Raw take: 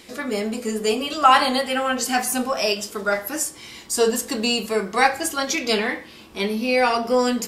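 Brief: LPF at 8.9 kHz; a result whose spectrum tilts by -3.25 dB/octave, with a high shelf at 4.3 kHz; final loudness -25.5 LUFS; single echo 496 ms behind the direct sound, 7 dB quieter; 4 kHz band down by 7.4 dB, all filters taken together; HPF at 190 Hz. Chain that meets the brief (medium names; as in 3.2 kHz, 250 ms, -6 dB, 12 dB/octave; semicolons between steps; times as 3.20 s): high-pass 190 Hz; low-pass 8.9 kHz; peaking EQ 4 kHz -6.5 dB; treble shelf 4.3 kHz -7 dB; delay 496 ms -7 dB; trim -3 dB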